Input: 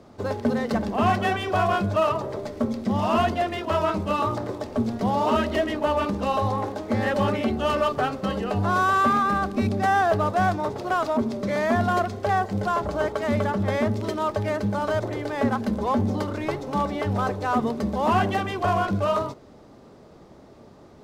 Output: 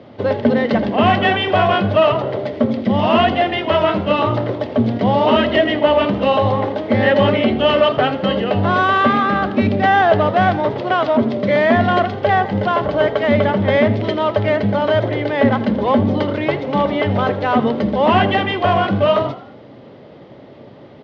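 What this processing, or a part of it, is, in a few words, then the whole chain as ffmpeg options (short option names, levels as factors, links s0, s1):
frequency-shifting delay pedal into a guitar cabinet: -filter_complex "[0:a]asplit=5[s0][s1][s2][s3][s4];[s1]adelay=82,afreqshift=47,volume=0.158[s5];[s2]adelay=164,afreqshift=94,volume=0.0776[s6];[s3]adelay=246,afreqshift=141,volume=0.038[s7];[s4]adelay=328,afreqshift=188,volume=0.0186[s8];[s0][s5][s6][s7][s8]amix=inputs=5:normalize=0,highpass=100,equalizer=f=120:t=q:w=4:g=8,equalizer=f=270:t=q:w=4:g=3,equalizer=f=550:t=q:w=4:g=6,equalizer=f=1200:t=q:w=4:g=-3,equalizer=f=2000:t=q:w=4:g=6,equalizer=f=3100:t=q:w=4:g=8,lowpass=f=4200:w=0.5412,lowpass=f=4200:w=1.3066,volume=2.11"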